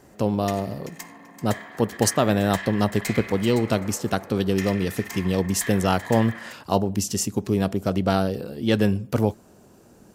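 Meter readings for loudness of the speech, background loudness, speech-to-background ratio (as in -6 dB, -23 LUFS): -24.0 LUFS, -37.0 LUFS, 13.0 dB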